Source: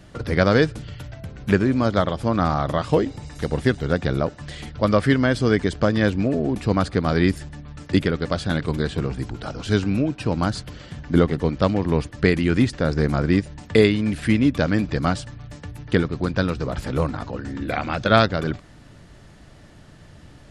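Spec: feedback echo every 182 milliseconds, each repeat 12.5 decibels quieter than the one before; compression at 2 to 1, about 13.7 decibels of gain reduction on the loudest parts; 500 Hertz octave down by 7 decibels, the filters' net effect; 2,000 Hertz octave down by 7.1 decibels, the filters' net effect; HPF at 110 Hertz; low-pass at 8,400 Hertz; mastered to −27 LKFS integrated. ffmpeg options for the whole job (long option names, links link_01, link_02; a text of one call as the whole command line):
ffmpeg -i in.wav -af "highpass=110,lowpass=8400,equalizer=frequency=500:width_type=o:gain=-8.5,equalizer=frequency=2000:width_type=o:gain=-9,acompressor=threshold=-41dB:ratio=2,aecho=1:1:182|364|546:0.237|0.0569|0.0137,volume=10dB" out.wav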